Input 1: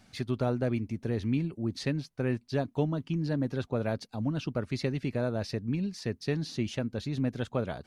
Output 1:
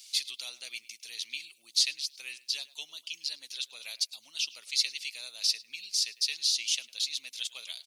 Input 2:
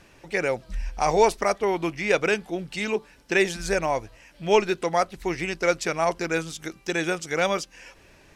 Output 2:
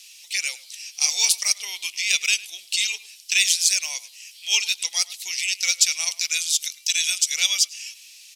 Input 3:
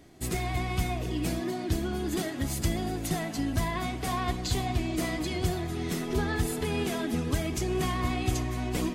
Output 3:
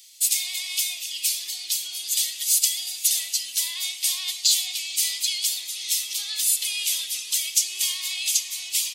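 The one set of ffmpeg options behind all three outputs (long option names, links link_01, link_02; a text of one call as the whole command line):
ffmpeg -i in.wav -filter_complex "[0:a]highpass=1500,asplit=2[link_01][link_02];[link_02]adelay=104,lowpass=frequency=3500:poles=1,volume=-18dB,asplit=2[link_03][link_04];[link_04]adelay=104,lowpass=frequency=3500:poles=1,volume=0.18[link_05];[link_01][link_03][link_05]amix=inputs=3:normalize=0,aexciter=amount=14.6:drive=8.1:freq=2500,volume=-11.5dB" out.wav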